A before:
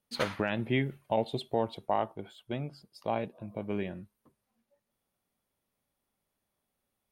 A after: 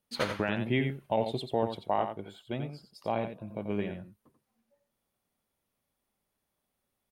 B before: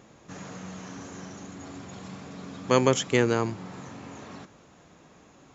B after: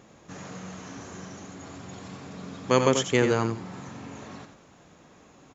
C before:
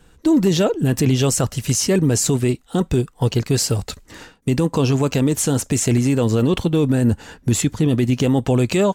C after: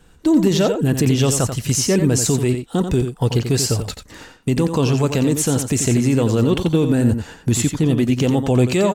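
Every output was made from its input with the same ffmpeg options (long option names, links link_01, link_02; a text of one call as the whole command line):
ffmpeg -i in.wav -af "aecho=1:1:88:0.398" out.wav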